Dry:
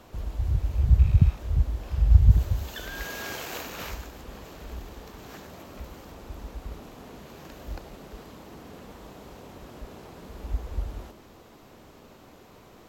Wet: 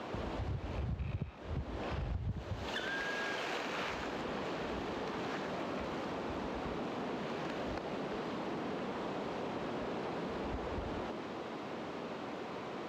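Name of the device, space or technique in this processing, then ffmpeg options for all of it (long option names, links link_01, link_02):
AM radio: -af "highpass=180,lowpass=3500,acompressor=threshold=-45dB:ratio=6,asoftclip=type=tanh:threshold=-39dB,volume=10.5dB"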